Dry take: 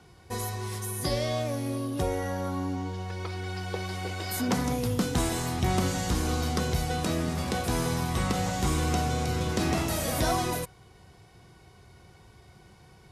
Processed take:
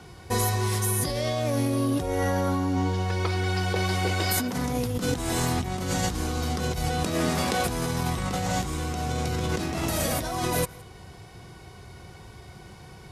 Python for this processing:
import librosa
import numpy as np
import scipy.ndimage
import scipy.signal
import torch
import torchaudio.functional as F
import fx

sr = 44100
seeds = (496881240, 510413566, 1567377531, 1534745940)

y = fx.low_shelf(x, sr, hz=160.0, db=-11.5, at=(7.14, 7.65))
y = fx.over_compress(y, sr, threshold_db=-32.0, ratio=-1.0)
y = y + 10.0 ** (-23.5 / 20.0) * np.pad(y, (int(165 * sr / 1000.0), 0))[:len(y)]
y = F.gain(torch.from_numpy(y), 5.5).numpy()